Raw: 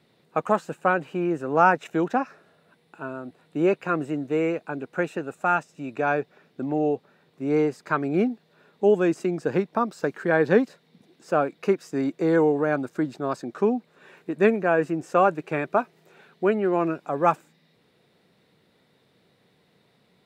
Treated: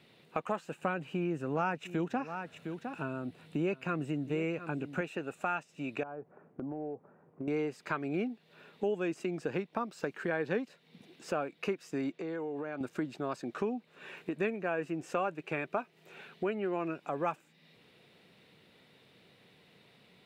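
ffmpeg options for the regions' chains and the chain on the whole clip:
ffmpeg -i in.wav -filter_complex "[0:a]asettb=1/sr,asplit=3[link_01][link_02][link_03];[link_01]atrim=end=0.824[link_04];[link_02]atrim=start=0.82:end=5.01,asetpts=PTS-STARTPTS,afade=type=in:duration=0.004:curve=qsin,afade=type=out:start_time=4.186:duration=0.004:curve=qsin,bass=frequency=250:gain=9,treble=frequency=4000:gain=3,aecho=1:1:709:0.15,atrim=end_sample=184779[link_05];[link_03]atrim=start=5.006[link_06];[link_04][link_05]acrossfade=duration=0.004:curve1=hsin:curve2=qsin[link_07];[link_07][link_06]acrossfade=duration=0.004:curve1=qsin:curve2=hsin,asettb=1/sr,asplit=3[link_08][link_09][link_10];[link_08]atrim=end=6.034[link_11];[link_09]atrim=start=6.03:end=7.48,asetpts=PTS-STARTPTS,afade=type=in:duration=0.004:curve=qsin,afade=type=out:start_time=1.446:duration=0.004:curve=qsin,lowpass=frequency=1200:width=0.5412,lowpass=frequency=1200:width=1.3066,acompressor=threshold=-33dB:ratio=12:attack=3.2:release=140:knee=1:detection=peak[link_12];[link_10]atrim=start=7.476[link_13];[link_11][link_12]acrossfade=duration=0.004:curve1=hsin:curve2=qsin[link_14];[link_14][link_13]acrossfade=duration=0.004:curve1=qsin:curve2=hsin,asettb=1/sr,asplit=3[link_15][link_16][link_17];[link_15]atrim=end=12.114[link_18];[link_16]atrim=start=12.11:end=12.81,asetpts=PTS-STARTPTS,afade=type=in:duration=0.004:curve=qsin,afade=type=out:start_time=0.696:duration=0.004:curve=qsin,acompressor=threshold=-32dB:ratio=5:attack=3.2:release=140:knee=1:detection=peak,highpass=140,lowpass=6100[link_19];[link_17]atrim=start=12.806[link_20];[link_18][link_19]acrossfade=duration=0.004:curve1=hsin:curve2=qsin[link_21];[link_21][link_20]acrossfade=duration=0.004:curve1=qsin:curve2=hsin,equalizer=frequency=2700:width_type=o:width=0.76:gain=8,acompressor=threshold=-36dB:ratio=2.5" out.wav

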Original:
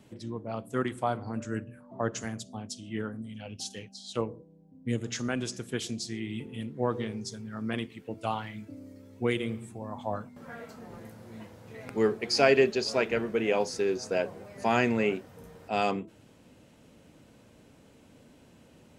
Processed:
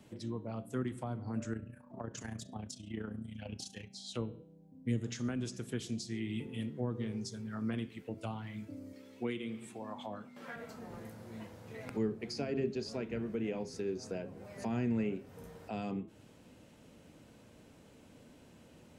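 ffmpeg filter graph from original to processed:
ffmpeg -i in.wav -filter_complex "[0:a]asettb=1/sr,asplit=3[link_01][link_02][link_03];[link_01]atrim=end=1.534[link_04];[link_02]atrim=start=1.53:end=3.96,asetpts=PTS-STARTPTS,afade=type=in:duration=0.004:curve=qsin,afade=type=out:start_time=2.426:duration=0.004:curve=qsin,aphaser=in_gain=1:out_gain=1:delay=1.2:decay=0.38:speed=2:type=sinusoidal,acompressor=threshold=-32dB:ratio=2.5:attack=3.2:release=140:knee=1:detection=peak,tremolo=f=29:d=0.71[link_05];[link_03]atrim=start=3.956[link_06];[link_04][link_05]acrossfade=duration=0.004:curve1=hsin:curve2=qsin[link_07];[link_07][link_06]acrossfade=duration=0.004:curve1=qsin:curve2=hsin,asettb=1/sr,asplit=3[link_08][link_09][link_10];[link_08]atrim=end=8.934[link_11];[link_09]atrim=start=8.93:end=10.56,asetpts=PTS-STARTPTS,afade=type=in:duration=0.004:curve=qsin,afade=type=out:start_time=1.626:duration=0.004:curve=qsin,highpass=220,equalizer=frequency=2900:width_type=o:width=1.7:gain=9[link_12];[link_10]atrim=start=10.556[link_13];[link_11][link_12]acrossfade=duration=0.004:curve1=hsin:curve2=qsin[link_14];[link_14][link_13]acrossfade=duration=0.004:curve1=qsin:curve2=hsin,acrossover=split=300[link_15][link_16];[link_16]acompressor=threshold=-40dB:ratio=10[link_17];[link_15][link_17]amix=inputs=2:normalize=0,bandreject=frequency=135.4:width_type=h:width=4,bandreject=frequency=270.8:width_type=h:width=4,bandreject=frequency=406.2:width_type=h:width=4,bandreject=frequency=541.6:width_type=h:width=4,bandreject=frequency=677:width_type=h:width=4,bandreject=frequency=812.4:width_type=h:width=4,bandreject=frequency=947.8:width_type=h:width=4,bandreject=frequency=1083.2:width_type=h:width=4,bandreject=frequency=1218.6:width_type=h:width=4,bandreject=frequency=1354:width_type=h:width=4,bandreject=frequency=1489.4:width_type=h:width=4,bandreject=frequency=1624.8:width_type=h:width=4,bandreject=frequency=1760.2:width_type=h:width=4,bandreject=frequency=1895.6:width_type=h:width=4,bandreject=frequency=2031:width_type=h:width=4,bandreject=frequency=2166.4:width_type=h:width=4,bandreject=frequency=2301.8:width_type=h:width=4,bandreject=frequency=2437.2:width_type=h:width=4,bandreject=frequency=2572.6:width_type=h:width=4,bandreject=frequency=2708:width_type=h:width=4,bandreject=frequency=2843.4:width_type=h:width=4,bandreject=frequency=2978.8:width_type=h:width=4,bandreject=frequency=3114.2:width_type=h:width=4,bandreject=frequency=3249.6:width_type=h:width=4,bandreject=frequency=3385:width_type=h:width=4,bandreject=frequency=3520.4:width_type=h:width=4,bandreject=frequency=3655.8:width_type=h:width=4,bandreject=frequency=3791.2:width_type=h:width=4,bandreject=frequency=3926.6:width_type=h:width=4,bandreject=frequency=4062:width_type=h:width=4,volume=-1.5dB" out.wav

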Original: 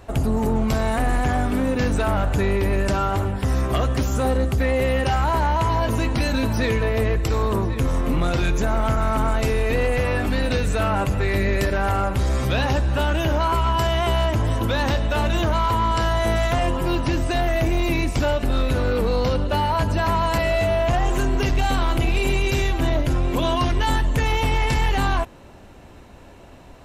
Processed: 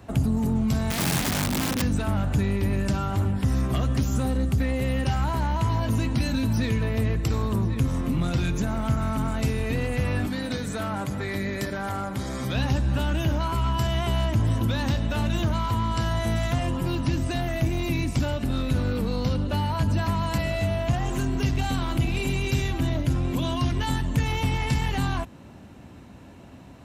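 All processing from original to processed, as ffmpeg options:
ffmpeg -i in.wav -filter_complex "[0:a]asettb=1/sr,asplit=3[link_01][link_02][link_03];[link_01]atrim=end=0.904[link_04];[link_02]atrim=start=0.9:end=1.82,asetpts=PTS-STARTPTS,afade=type=in:duration=0.004:curve=qsin,afade=type=out:start_time=0.916:duration=0.004:curve=qsin,equalizer=frequency=410:width=3.6:gain=2.5,aeval=exprs='(mod(5.96*val(0)+1,2)-1)/5.96':channel_layout=same[link_05];[link_03]atrim=start=1.816[link_06];[link_04][link_05]acrossfade=duration=0.004:curve1=hsin:curve2=qsin[link_07];[link_07][link_06]acrossfade=duration=0.004:curve1=qsin:curve2=hsin,asettb=1/sr,asplit=3[link_08][link_09][link_10];[link_08]atrim=end=10.274[link_11];[link_09]atrim=start=10.27:end=12.55,asetpts=PTS-STARTPTS,afade=type=in:duration=0.004:curve=qsin,afade=type=out:start_time=2.276:duration=0.004:curve=qsin,highpass=frequency=270:poles=1,bandreject=frequency=2700:width=6.9[link_12];[link_10]atrim=start=12.546[link_13];[link_11][link_12]acrossfade=duration=0.004:curve1=hsin:curve2=qsin[link_14];[link_14][link_13]acrossfade=duration=0.004:curve1=qsin:curve2=hsin,highpass=86,lowshelf=frequency=320:width_type=q:width=1.5:gain=6,acrossover=split=150|3000[link_15][link_16][link_17];[link_16]acompressor=threshold=-27dB:ratio=2[link_18];[link_15][link_18][link_17]amix=inputs=3:normalize=0,volume=-3.5dB" out.wav

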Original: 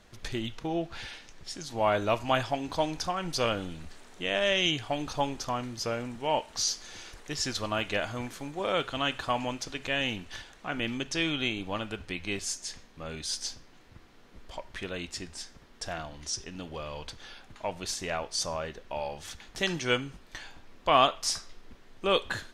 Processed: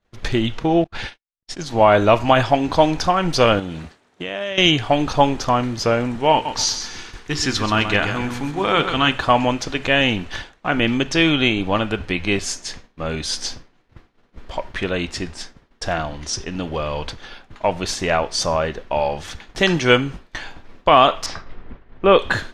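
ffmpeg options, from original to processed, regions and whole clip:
ffmpeg -i in.wav -filter_complex "[0:a]asettb=1/sr,asplit=3[link_01][link_02][link_03];[link_01]atrim=end=0.844[link_04];[link_02]atrim=start=0.84:end=1.66,asetpts=PTS-STARTPTS,afade=type=in:duration=0.004:curve=qsin,afade=type=out:start_time=0.816:duration=0.004:curve=qsin,agate=range=-40dB:threshold=-42dB:ratio=16:release=100:detection=peak,lowpass=frequency=12000:width=0.5412,lowpass=frequency=12000:width=1.3066[link_05];[link_03]atrim=start=1.656[link_06];[link_04][link_05]acrossfade=duration=0.004:curve1=hsin:curve2=qsin[link_07];[link_07][link_06]acrossfade=duration=0.004:curve1=qsin:curve2=hsin,asettb=1/sr,asplit=3[link_08][link_09][link_10];[link_08]atrim=end=3.594[link_11];[link_09]atrim=start=3.59:end=4.58,asetpts=PTS-STARTPTS,afade=type=in:duration=0.004:curve=qsin,afade=type=out:start_time=0.986:duration=0.004:curve=qsin,highpass=81,acompressor=threshold=-38dB:ratio=4:attack=3.2:release=140:knee=1:detection=peak[link_12];[link_10]atrim=start=4.576[link_13];[link_11][link_12]acrossfade=duration=0.004:curve1=hsin:curve2=qsin[link_14];[link_14][link_13]acrossfade=duration=0.004:curve1=qsin:curve2=hsin,asettb=1/sr,asplit=3[link_15][link_16][link_17];[link_15]atrim=end=6.324[link_18];[link_16]atrim=start=6.32:end=9.12,asetpts=PTS-STARTPTS,afade=type=in:duration=0.004:curve=qsin,afade=type=out:start_time=2.796:duration=0.004:curve=qsin,equalizer=frequency=590:width_type=o:width=0.46:gain=-10.5,bandreject=frequency=60:width_type=h:width=6,bandreject=frequency=120:width_type=h:width=6,bandreject=frequency=180:width_type=h:width=6,bandreject=frequency=240:width_type=h:width=6,bandreject=frequency=300:width_type=h:width=6,bandreject=frequency=360:width_type=h:width=6,bandreject=frequency=420:width_type=h:width=6,bandreject=frequency=480:width_type=h:width=6,bandreject=frequency=540:width_type=h:width=6,aecho=1:1:131|262|393|524:0.355|0.121|0.041|0.0139,atrim=end_sample=123480[link_19];[link_17]atrim=start=9.116[link_20];[link_18][link_19]acrossfade=duration=0.004:curve1=hsin:curve2=qsin[link_21];[link_21][link_20]acrossfade=duration=0.004:curve1=qsin:curve2=hsin,asettb=1/sr,asplit=3[link_22][link_23][link_24];[link_22]atrim=end=21.264[link_25];[link_23]atrim=start=21.26:end=22.19,asetpts=PTS-STARTPTS,afade=type=in:duration=0.004:curve=qsin,afade=type=out:start_time=0.926:duration=0.004:curve=qsin,lowpass=2400,aeval=exprs='val(0)+0.00112*(sin(2*PI*50*n/s)+sin(2*PI*2*50*n/s)/2+sin(2*PI*3*50*n/s)/3+sin(2*PI*4*50*n/s)/4+sin(2*PI*5*50*n/s)/5)':channel_layout=same[link_26];[link_24]atrim=start=22.186[link_27];[link_25][link_26]acrossfade=duration=0.004:curve1=hsin:curve2=qsin[link_28];[link_28][link_27]acrossfade=duration=0.004:curve1=qsin:curve2=hsin,lowpass=frequency=2900:poles=1,agate=range=-33dB:threshold=-43dB:ratio=3:detection=peak,alimiter=level_in=15.5dB:limit=-1dB:release=50:level=0:latency=1,volume=-1dB" out.wav

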